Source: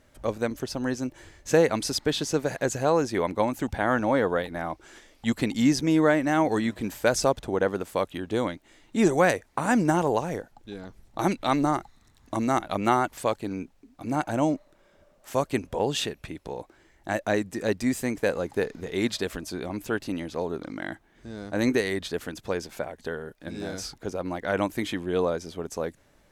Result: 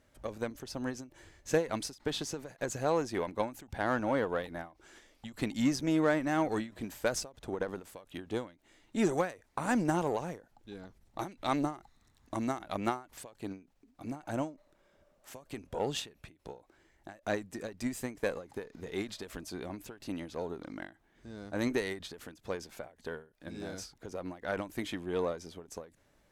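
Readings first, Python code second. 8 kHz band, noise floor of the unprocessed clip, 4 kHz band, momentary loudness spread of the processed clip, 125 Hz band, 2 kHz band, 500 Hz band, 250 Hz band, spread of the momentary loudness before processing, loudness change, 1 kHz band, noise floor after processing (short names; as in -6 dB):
-8.0 dB, -61 dBFS, -8.5 dB, 18 LU, -9.0 dB, -9.0 dB, -9.0 dB, -8.5 dB, 13 LU, -8.5 dB, -9.5 dB, -69 dBFS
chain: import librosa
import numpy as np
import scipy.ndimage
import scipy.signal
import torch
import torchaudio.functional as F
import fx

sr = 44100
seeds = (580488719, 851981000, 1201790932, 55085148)

y = fx.cheby_harmonics(x, sr, harmonics=(8,), levels_db=(-29,), full_scale_db=-7.5)
y = fx.end_taper(y, sr, db_per_s=180.0)
y = y * librosa.db_to_amplitude(-7.0)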